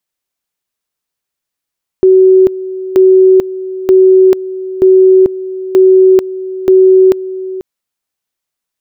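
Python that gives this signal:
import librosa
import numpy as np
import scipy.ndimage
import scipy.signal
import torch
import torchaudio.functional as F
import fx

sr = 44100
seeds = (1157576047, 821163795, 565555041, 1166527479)

y = fx.two_level_tone(sr, hz=376.0, level_db=-2.0, drop_db=15.5, high_s=0.44, low_s=0.49, rounds=6)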